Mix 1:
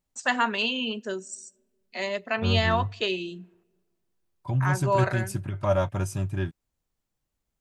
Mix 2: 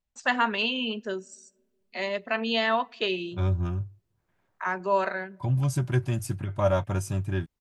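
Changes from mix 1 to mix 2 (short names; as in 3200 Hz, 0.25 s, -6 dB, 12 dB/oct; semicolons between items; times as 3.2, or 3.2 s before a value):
first voice: add LPF 4800 Hz 12 dB/oct; second voice: entry +0.95 s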